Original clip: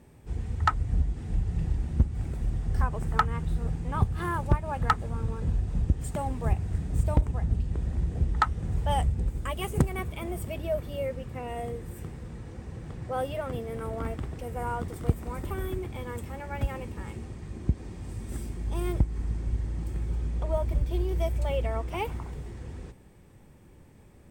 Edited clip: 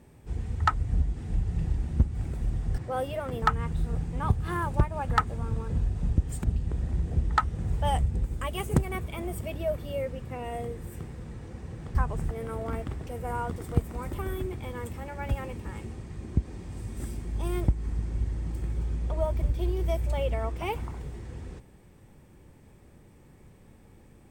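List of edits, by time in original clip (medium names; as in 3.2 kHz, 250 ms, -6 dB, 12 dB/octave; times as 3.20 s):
2.78–3.14 s: swap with 12.99–13.63 s
6.16–7.48 s: delete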